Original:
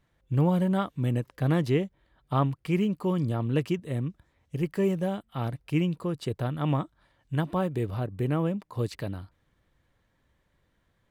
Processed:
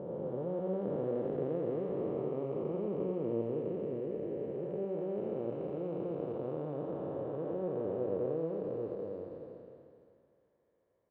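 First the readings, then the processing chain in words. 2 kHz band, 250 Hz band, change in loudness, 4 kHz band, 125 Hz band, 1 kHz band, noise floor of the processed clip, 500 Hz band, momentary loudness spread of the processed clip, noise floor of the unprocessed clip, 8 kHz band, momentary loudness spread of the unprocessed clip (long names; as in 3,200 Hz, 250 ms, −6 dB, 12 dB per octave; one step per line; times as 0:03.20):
below −20 dB, −10.0 dB, −8.0 dB, below −20 dB, −16.5 dB, −12.5 dB, −75 dBFS, −1.5 dB, 4 LU, −72 dBFS, can't be measured, 8 LU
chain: spectrum smeared in time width 1,200 ms
resonant band-pass 480 Hz, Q 3.4
on a send: single-tap delay 86 ms −5.5 dB
on the sum: level +7.5 dB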